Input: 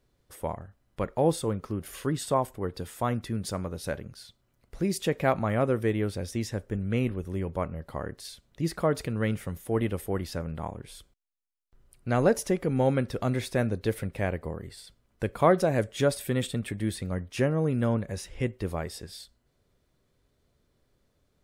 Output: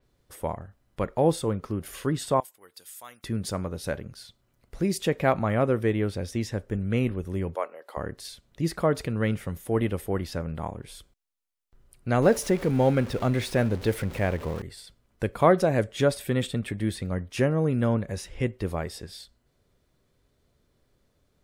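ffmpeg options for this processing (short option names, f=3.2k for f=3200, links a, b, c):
-filter_complex "[0:a]asettb=1/sr,asplit=3[a][b][c];[a]atrim=end=2.404[d];[b]atrim=start=2.4:end=3.24,asetpts=PTS-STARTPTS,afade=t=in:d=0.004:c=qsin,afade=t=out:st=0.836:d=0.004:c=qsin,aderivative[e];[c]atrim=start=3.236[f];[d][e]acrossfade=d=0.004:c1=hsin:c2=qsin[g];[g][f]acrossfade=d=0.004:c1=qsin:c2=hsin,asettb=1/sr,asplit=3[h][i][j];[h]atrim=end=7.554[k];[i]atrim=start=7.55:end=7.97,asetpts=PTS-STARTPTS,afade=t=in:d=0.004:c=qsin,afade=t=out:st=0.416:d=0.004:c=qsin,highpass=f=430:w=0.5412,highpass=f=430:w=1.3066[l];[j]atrim=start=7.966[m];[k][l]acrossfade=d=0.004:c1=hsin:c2=qsin[n];[n][m]acrossfade=d=0.004:c1=qsin:c2=hsin,asettb=1/sr,asplit=3[o][p][q];[o]atrim=end=12.224[r];[p]atrim=start=12.22:end=14.62,asetpts=PTS-STARTPTS,afade=t=in:d=0.004:c=qsin,afade=t=out:st=2.396:d=0.004:c=qsin,aeval=exprs='val(0)+0.5*0.0141*sgn(val(0))':c=same[s];[q]atrim=start=14.616[t];[r][s]acrossfade=d=0.004:c1=hsin:c2=qsin[u];[u][t]acrossfade=d=0.004:c1=qsin:c2=hsin,adynamicequalizer=threshold=0.00282:dfrequency=5600:dqfactor=0.7:tfrequency=5600:tqfactor=0.7:attack=5:release=100:ratio=0.375:range=2.5:mode=cutabove:tftype=highshelf,volume=2dB"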